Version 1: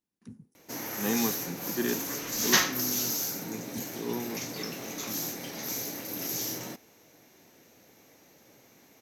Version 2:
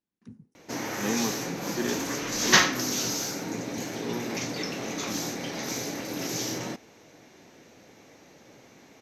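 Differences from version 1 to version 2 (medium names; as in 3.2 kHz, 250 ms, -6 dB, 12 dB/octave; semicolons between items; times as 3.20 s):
background +6.5 dB; master: add distance through air 71 m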